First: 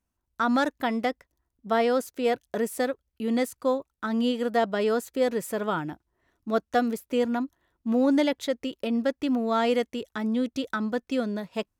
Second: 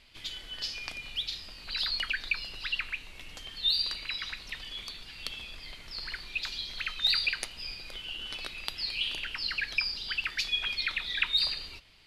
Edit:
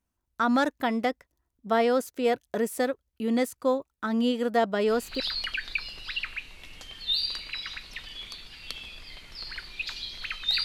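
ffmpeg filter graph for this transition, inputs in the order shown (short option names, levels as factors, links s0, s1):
-filter_complex "[0:a]apad=whole_dur=10.64,atrim=end=10.64,atrim=end=5.2,asetpts=PTS-STARTPTS[s0];[1:a]atrim=start=1.44:end=7.2,asetpts=PTS-STARTPTS[s1];[s0][s1]acrossfade=d=0.32:c1=log:c2=log"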